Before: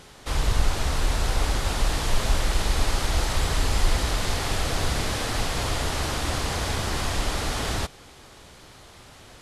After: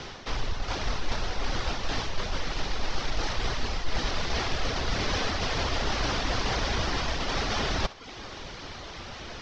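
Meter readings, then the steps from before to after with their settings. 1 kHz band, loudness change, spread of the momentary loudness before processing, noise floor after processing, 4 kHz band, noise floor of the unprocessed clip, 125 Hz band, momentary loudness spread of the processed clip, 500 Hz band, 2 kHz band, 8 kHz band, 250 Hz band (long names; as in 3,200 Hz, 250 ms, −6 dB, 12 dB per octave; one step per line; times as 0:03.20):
−2.0 dB, −4.5 dB, 2 LU, −42 dBFS, −2.0 dB, −48 dBFS, −6.5 dB, 12 LU, −2.0 dB, −1.5 dB, −8.5 dB, −2.5 dB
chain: reverb reduction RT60 0.54 s
reversed playback
downward compressor 6 to 1, threshold −32 dBFS, peak gain reduction 17 dB
reversed playback
frequency shifter −26 Hz
in parallel at −4.5 dB: soft clipping −33.5 dBFS, distortion −12 dB
on the sum: elliptic low-pass filter 5,800 Hz, stop band 70 dB
feedback echo with a high-pass in the loop 65 ms, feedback 44%, level −16 dB
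level +6 dB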